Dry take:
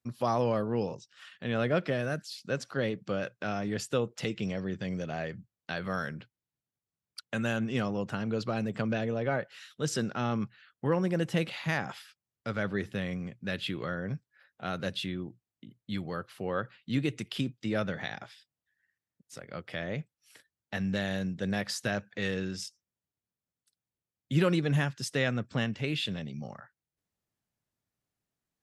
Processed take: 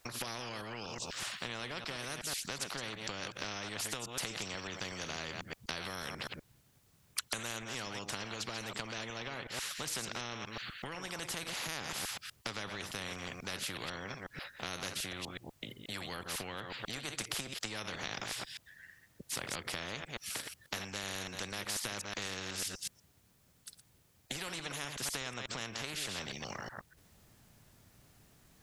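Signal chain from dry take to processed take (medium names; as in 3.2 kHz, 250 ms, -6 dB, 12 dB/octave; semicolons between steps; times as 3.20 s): chunks repeated in reverse 123 ms, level -12 dB; compression 12:1, threshold -39 dBFS, peak gain reduction 19 dB; bass shelf 91 Hz +8.5 dB; spectrum-flattening compressor 4:1; trim +9.5 dB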